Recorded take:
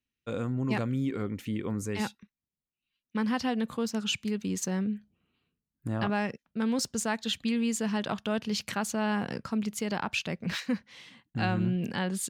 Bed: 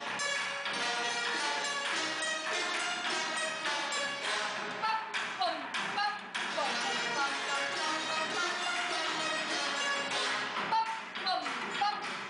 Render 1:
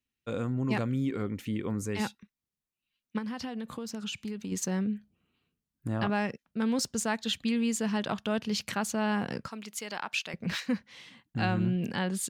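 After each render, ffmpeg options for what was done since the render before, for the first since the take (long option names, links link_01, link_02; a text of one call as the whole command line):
ffmpeg -i in.wav -filter_complex "[0:a]asettb=1/sr,asplit=3[link_01][link_02][link_03];[link_01]atrim=end=3.184[link_04];[link_02]atrim=start=3.18:end=4.52,asetpts=PTS-STARTPTS,afade=type=in:duration=0.004:curve=qsin,afade=type=out:start_time=1.336:duration=0.004:curve=qsin,acompressor=threshold=-32dB:ratio=12:attack=3.2:release=140:knee=1:detection=peak[link_05];[link_03]atrim=start=4.516[link_06];[link_04][link_05]acrossfade=duration=0.004:curve1=hsin:curve2=qsin[link_07];[link_07][link_06]acrossfade=duration=0.004:curve1=qsin:curve2=hsin,asettb=1/sr,asplit=3[link_08][link_09][link_10];[link_08]atrim=end=9.484[link_11];[link_09]atrim=start=9.48:end=10.34,asetpts=PTS-STARTPTS,afade=type=in:duration=0.004:curve=qsin,afade=type=out:start_time=0.856:duration=0.004:curve=qsin,highpass=frequency=990:poles=1[link_12];[link_10]atrim=start=10.336[link_13];[link_11][link_12]acrossfade=duration=0.004:curve1=hsin:curve2=qsin[link_14];[link_14][link_13]acrossfade=duration=0.004:curve1=qsin:curve2=hsin" out.wav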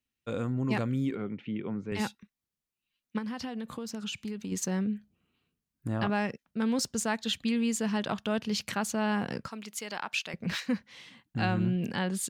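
ffmpeg -i in.wav -filter_complex "[0:a]asettb=1/sr,asplit=3[link_01][link_02][link_03];[link_01]atrim=end=1.154[link_04];[link_02]atrim=start=1.15:end=1.92,asetpts=PTS-STARTPTS,afade=type=in:duration=0.004:curve=qsin,afade=type=out:start_time=0.766:duration=0.004:curve=qsin,highpass=frequency=130:width=0.5412,highpass=frequency=130:width=1.3066,equalizer=frequency=280:width_type=q:width=4:gain=-5,equalizer=frequency=500:width_type=q:width=4:gain=-4,equalizer=frequency=1100:width_type=q:width=4:gain=-6,equalizer=frequency=1800:width_type=q:width=4:gain=-6,lowpass=frequency=3000:width=0.5412,lowpass=frequency=3000:width=1.3066[link_05];[link_03]atrim=start=1.916[link_06];[link_04][link_05]acrossfade=duration=0.004:curve1=hsin:curve2=qsin[link_07];[link_07][link_06]acrossfade=duration=0.004:curve1=qsin:curve2=hsin" out.wav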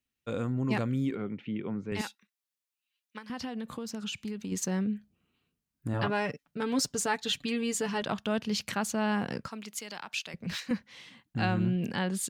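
ffmpeg -i in.wav -filter_complex "[0:a]asettb=1/sr,asplit=3[link_01][link_02][link_03];[link_01]atrim=end=2.014[link_04];[link_02]atrim=start=2.01:end=3.3,asetpts=PTS-STARTPTS,afade=type=in:duration=0.004:curve=qsin,afade=type=out:start_time=1.286:duration=0.004:curve=qsin,highpass=frequency=1300:poles=1[link_05];[link_03]atrim=start=3.296[link_06];[link_04][link_05]acrossfade=duration=0.004:curve1=hsin:curve2=qsin[link_07];[link_07][link_06]acrossfade=duration=0.004:curve1=qsin:curve2=hsin,asettb=1/sr,asplit=3[link_08][link_09][link_10];[link_08]atrim=end=5.934[link_11];[link_09]atrim=start=5.93:end=8.02,asetpts=PTS-STARTPTS,afade=type=in:duration=0.004:curve=qsin,afade=type=out:start_time=2.086:duration=0.004:curve=qsin,aecho=1:1:6.9:0.65,atrim=end_sample=92169[link_12];[link_10]atrim=start=8.016[link_13];[link_11][link_12]acrossfade=duration=0.004:curve1=hsin:curve2=qsin[link_14];[link_14][link_13]acrossfade=duration=0.004:curve1=qsin:curve2=hsin,asettb=1/sr,asplit=3[link_15][link_16][link_17];[link_15]atrim=end=9.744[link_18];[link_16]atrim=start=9.74:end=10.71,asetpts=PTS-STARTPTS,afade=type=in:duration=0.004:curve=qsin,afade=type=out:start_time=0.966:duration=0.004:curve=qsin,acrossover=split=160|3000[link_19][link_20][link_21];[link_20]acompressor=threshold=-48dB:ratio=1.5:attack=3.2:release=140:knee=2.83:detection=peak[link_22];[link_19][link_22][link_21]amix=inputs=3:normalize=0[link_23];[link_17]atrim=start=10.706[link_24];[link_18][link_23]acrossfade=duration=0.004:curve1=hsin:curve2=qsin[link_25];[link_25][link_24]acrossfade=duration=0.004:curve1=qsin:curve2=hsin" out.wav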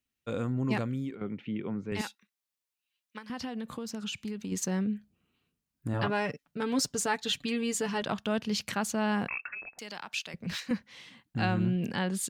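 ffmpeg -i in.wav -filter_complex "[0:a]asettb=1/sr,asplit=3[link_01][link_02][link_03];[link_01]atrim=end=9.284[link_04];[link_02]atrim=start=9.28:end=9.79,asetpts=PTS-STARTPTS,afade=type=in:duration=0.004:curve=qsin,afade=type=out:start_time=0.506:duration=0.004:curve=qsin,lowpass=frequency=2400:width_type=q:width=0.5098,lowpass=frequency=2400:width_type=q:width=0.6013,lowpass=frequency=2400:width_type=q:width=0.9,lowpass=frequency=2400:width_type=q:width=2.563,afreqshift=-2800[link_05];[link_03]atrim=start=9.786[link_06];[link_04][link_05]acrossfade=duration=0.004:curve1=hsin:curve2=qsin[link_07];[link_07][link_06]acrossfade=duration=0.004:curve1=qsin:curve2=hsin,asplit=2[link_08][link_09];[link_08]atrim=end=1.21,asetpts=PTS-STARTPTS,afade=type=out:start_time=0.71:duration=0.5:silence=0.316228[link_10];[link_09]atrim=start=1.21,asetpts=PTS-STARTPTS,afade=type=in:duration=0.004:curve=hsin:silence=0.316228[link_11];[link_10][link_11]concat=n=2:v=0:a=1" out.wav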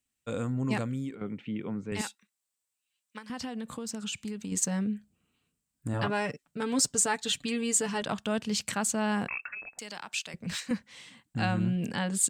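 ffmpeg -i in.wav -af "equalizer=frequency=8000:width_type=o:width=0.42:gain=12,bandreject=frequency=370:width=12" out.wav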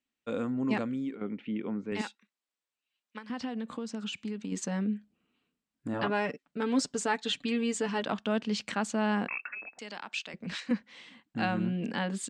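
ffmpeg -i in.wav -af "lowpass=4000,lowshelf=frequency=170:width_type=q:width=1.5:gain=-9" out.wav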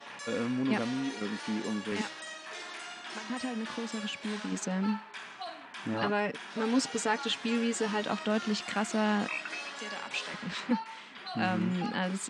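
ffmpeg -i in.wav -i bed.wav -filter_complex "[1:a]volume=-9dB[link_01];[0:a][link_01]amix=inputs=2:normalize=0" out.wav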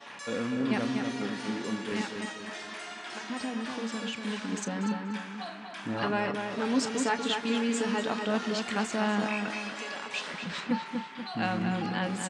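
ffmpeg -i in.wav -filter_complex "[0:a]asplit=2[link_01][link_02];[link_02]adelay=35,volume=-14dB[link_03];[link_01][link_03]amix=inputs=2:normalize=0,asplit=2[link_04][link_05];[link_05]adelay=241,lowpass=frequency=3300:poles=1,volume=-5dB,asplit=2[link_06][link_07];[link_07]adelay=241,lowpass=frequency=3300:poles=1,volume=0.47,asplit=2[link_08][link_09];[link_09]adelay=241,lowpass=frequency=3300:poles=1,volume=0.47,asplit=2[link_10][link_11];[link_11]adelay=241,lowpass=frequency=3300:poles=1,volume=0.47,asplit=2[link_12][link_13];[link_13]adelay=241,lowpass=frequency=3300:poles=1,volume=0.47,asplit=2[link_14][link_15];[link_15]adelay=241,lowpass=frequency=3300:poles=1,volume=0.47[link_16];[link_06][link_08][link_10][link_12][link_14][link_16]amix=inputs=6:normalize=0[link_17];[link_04][link_17]amix=inputs=2:normalize=0" out.wav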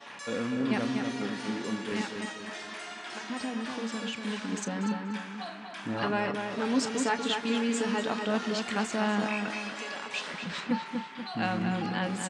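ffmpeg -i in.wav -af anull out.wav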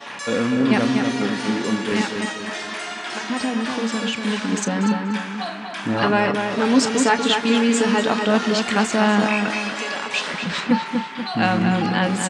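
ffmpeg -i in.wav -af "volume=11dB" out.wav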